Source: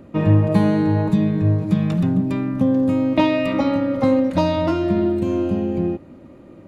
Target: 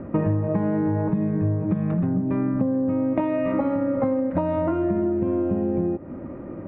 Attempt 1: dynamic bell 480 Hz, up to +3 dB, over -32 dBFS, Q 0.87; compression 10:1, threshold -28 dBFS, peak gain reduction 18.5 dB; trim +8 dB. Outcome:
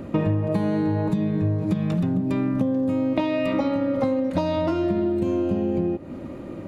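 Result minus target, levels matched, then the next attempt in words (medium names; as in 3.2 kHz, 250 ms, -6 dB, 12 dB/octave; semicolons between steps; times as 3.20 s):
2 kHz band +4.0 dB
dynamic bell 480 Hz, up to +3 dB, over -32 dBFS, Q 0.87; low-pass 1.9 kHz 24 dB/octave; compression 10:1, threshold -28 dBFS, peak gain reduction 18.5 dB; trim +8 dB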